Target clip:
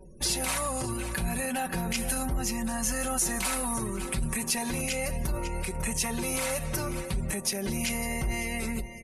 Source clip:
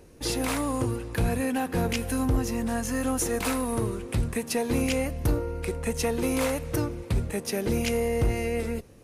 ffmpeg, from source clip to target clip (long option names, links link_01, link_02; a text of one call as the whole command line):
ffmpeg -i in.wav -af "aecho=1:1:5.3:0.8,aecho=1:1:548|1096:0.133|0.024,alimiter=level_in=0.5dB:limit=-24dB:level=0:latency=1:release=71,volume=-0.5dB,highshelf=frequency=5100:gain=8,afftdn=noise_reduction=36:noise_floor=-51,lowpass=frequency=12000:width=0.5412,lowpass=frequency=12000:width=1.3066,equalizer=frequency=360:width_type=o:width=1.6:gain=-6.5,volume=4dB" out.wav